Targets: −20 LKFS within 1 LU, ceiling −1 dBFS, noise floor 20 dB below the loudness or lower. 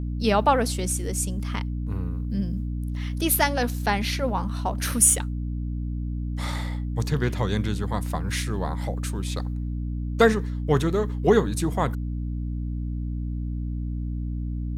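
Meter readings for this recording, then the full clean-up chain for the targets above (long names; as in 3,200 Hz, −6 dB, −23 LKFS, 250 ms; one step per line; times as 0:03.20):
mains hum 60 Hz; hum harmonics up to 300 Hz; level of the hum −26 dBFS; integrated loudness −25.5 LKFS; sample peak −5.0 dBFS; target loudness −20.0 LKFS
→ hum removal 60 Hz, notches 5
level +5.5 dB
brickwall limiter −1 dBFS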